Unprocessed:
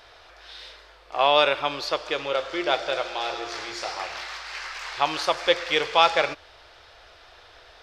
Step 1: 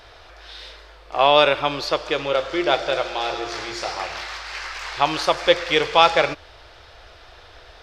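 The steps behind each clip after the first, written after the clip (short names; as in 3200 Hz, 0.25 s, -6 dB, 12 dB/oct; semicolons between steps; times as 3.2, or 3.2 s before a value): low shelf 300 Hz +8 dB; gain +3 dB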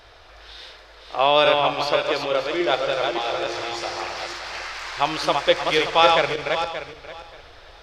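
regenerating reverse delay 0.289 s, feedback 42%, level -3.5 dB; gain -2.5 dB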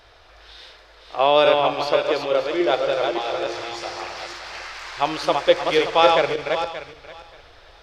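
dynamic EQ 430 Hz, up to +6 dB, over -29 dBFS, Q 0.77; gain -2.5 dB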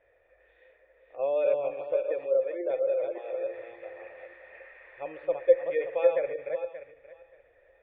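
added harmonics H 3 -15 dB, 4 -23 dB, 5 -23 dB, 6 -23 dB, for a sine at -1 dBFS; spectral gate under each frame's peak -25 dB strong; vocal tract filter e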